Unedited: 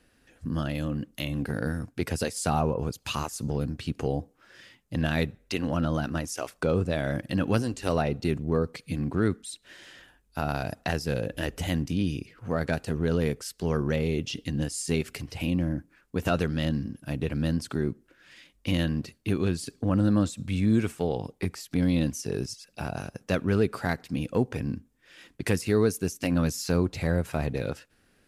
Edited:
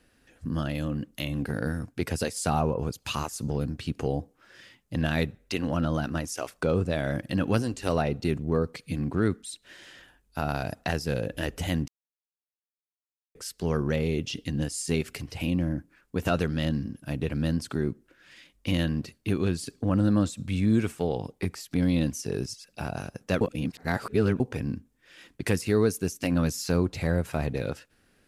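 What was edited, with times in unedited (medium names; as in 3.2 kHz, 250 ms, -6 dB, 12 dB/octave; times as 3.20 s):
11.88–13.35 s: mute
23.41–24.40 s: reverse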